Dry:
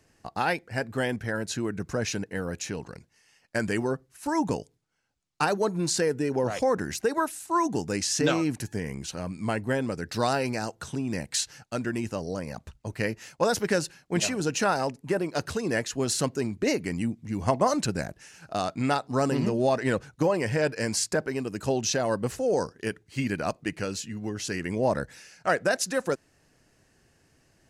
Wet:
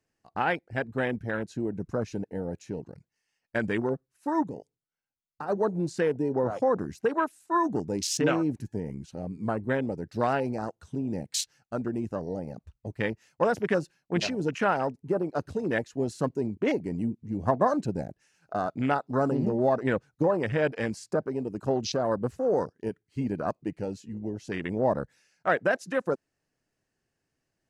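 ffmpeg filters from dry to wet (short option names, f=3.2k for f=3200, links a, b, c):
-filter_complex "[0:a]asplit=3[a][b][c];[a]afade=t=out:st=4.42:d=0.02[d];[b]acompressor=threshold=-34dB:ratio=3:attack=3.2:release=140:knee=1:detection=peak,afade=t=in:st=4.42:d=0.02,afade=t=out:st=5.48:d=0.02[e];[c]afade=t=in:st=5.48:d=0.02[f];[d][e][f]amix=inputs=3:normalize=0,equalizer=f=60:t=o:w=1.7:g=-4.5,afwtdn=0.0251,highshelf=f=9.4k:g=-4.5"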